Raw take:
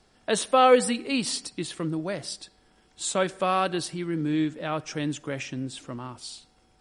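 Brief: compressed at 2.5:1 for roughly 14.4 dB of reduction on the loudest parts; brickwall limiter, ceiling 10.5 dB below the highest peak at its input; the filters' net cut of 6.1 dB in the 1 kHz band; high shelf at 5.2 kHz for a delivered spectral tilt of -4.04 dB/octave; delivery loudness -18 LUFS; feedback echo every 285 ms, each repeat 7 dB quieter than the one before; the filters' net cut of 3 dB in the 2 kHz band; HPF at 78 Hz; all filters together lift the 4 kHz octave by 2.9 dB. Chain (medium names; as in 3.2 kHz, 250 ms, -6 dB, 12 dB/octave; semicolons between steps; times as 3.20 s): high-pass 78 Hz; peaking EQ 1 kHz -8.5 dB; peaking EQ 2 kHz -3 dB; peaking EQ 4 kHz +7.5 dB; treble shelf 5.2 kHz -6 dB; compression 2.5:1, threshold -37 dBFS; peak limiter -32 dBFS; feedback delay 285 ms, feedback 45%, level -7 dB; trim +22.5 dB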